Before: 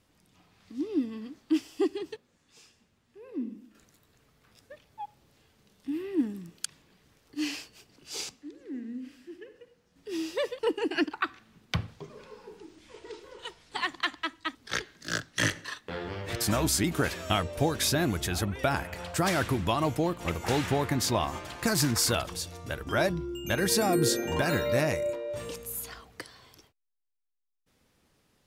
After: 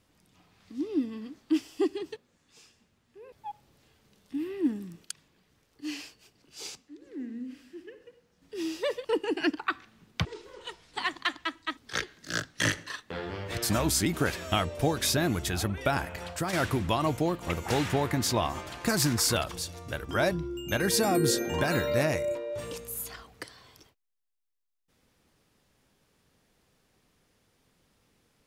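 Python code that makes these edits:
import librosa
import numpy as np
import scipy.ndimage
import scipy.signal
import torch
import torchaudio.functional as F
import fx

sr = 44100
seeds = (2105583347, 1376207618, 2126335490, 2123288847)

y = fx.edit(x, sr, fx.cut(start_s=3.32, length_s=1.54),
    fx.clip_gain(start_s=6.59, length_s=1.97, db=-4.5),
    fx.cut(start_s=11.79, length_s=1.24),
    fx.fade_out_to(start_s=19.03, length_s=0.28, floor_db=-8.0), tone=tone)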